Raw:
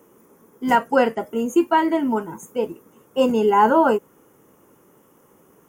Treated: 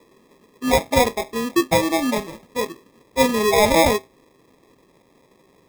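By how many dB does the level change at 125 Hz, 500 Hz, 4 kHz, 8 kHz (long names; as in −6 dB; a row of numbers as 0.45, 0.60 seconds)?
+8.5, +0.5, +10.0, +14.0 decibels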